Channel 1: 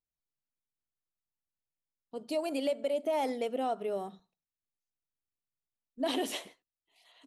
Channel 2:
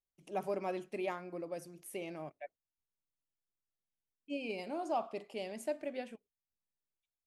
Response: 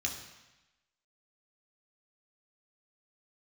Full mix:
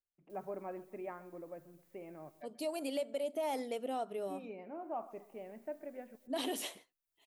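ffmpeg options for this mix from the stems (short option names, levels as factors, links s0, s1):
-filter_complex "[0:a]acompressor=mode=upward:threshold=0.00224:ratio=2.5,adelay=300,volume=0.531[s0];[1:a]lowpass=f=1900:w=0.5412,lowpass=f=1900:w=1.3066,volume=0.501,asplit=2[s1][s2];[s2]volume=0.106,aecho=0:1:131|262|393|524|655|786:1|0.45|0.202|0.0911|0.041|0.0185[s3];[s0][s1][s3]amix=inputs=3:normalize=0,highshelf=f=8900:g=10.5"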